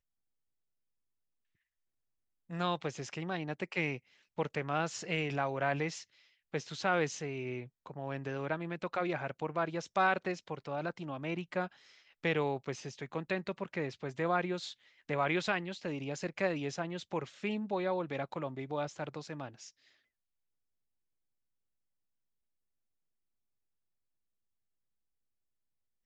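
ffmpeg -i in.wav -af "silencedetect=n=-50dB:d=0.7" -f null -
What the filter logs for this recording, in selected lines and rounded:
silence_start: 0.00
silence_end: 2.50 | silence_duration: 2.50
silence_start: 19.69
silence_end: 26.05 | silence_duration: 6.36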